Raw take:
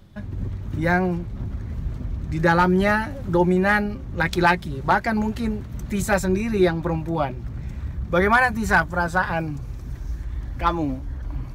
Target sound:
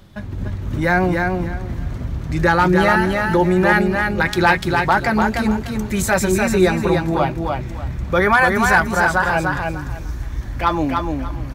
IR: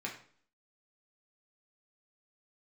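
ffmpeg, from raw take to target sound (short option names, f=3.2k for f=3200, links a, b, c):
-filter_complex "[0:a]lowshelf=f=350:g=-5.5,asplit=2[a][b];[b]alimiter=limit=-17.5dB:level=0:latency=1:release=30,volume=3dB[c];[a][c]amix=inputs=2:normalize=0,aecho=1:1:296|592|888:0.631|0.145|0.0334"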